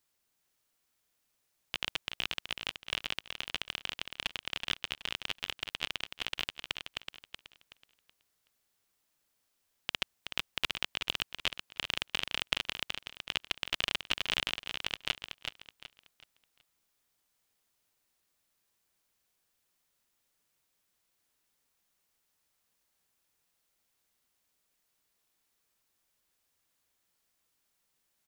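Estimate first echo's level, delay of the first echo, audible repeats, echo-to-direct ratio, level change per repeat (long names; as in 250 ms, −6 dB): −7.0 dB, 375 ms, 3, −6.5 dB, −10.0 dB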